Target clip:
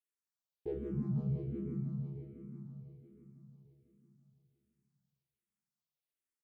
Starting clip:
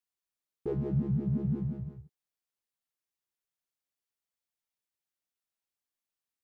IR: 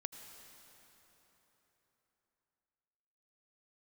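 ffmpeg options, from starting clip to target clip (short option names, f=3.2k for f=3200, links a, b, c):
-filter_complex "[0:a]aecho=1:1:499|998|1497|1996|2495|2994:0.447|0.214|0.103|0.0494|0.0237|0.0114[a];[1:a]atrim=start_sample=2205,asetrate=70560,aresample=44100[b];[a][b]afir=irnorm=-1:irlink=0,asplit=2[c][d];[d]afreqshift=-1.3[e];[c][e]amix=inputs=2:normalize=1,volume=3dB"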